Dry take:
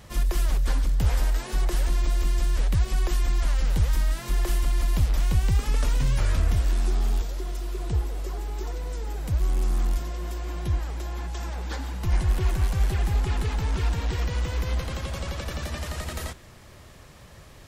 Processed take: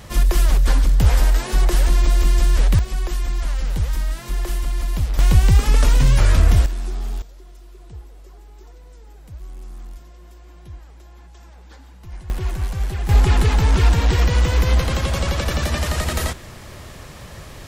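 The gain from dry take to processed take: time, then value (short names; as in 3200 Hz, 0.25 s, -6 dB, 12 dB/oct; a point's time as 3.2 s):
+8 dB
from 2.79 s +1 dB
from 5.19 s +9 dB
from 6.66 s -2 dB
from 7.22 s -12 dB
from 12.3 s 0 dB
from 13.09 s +10.5 dB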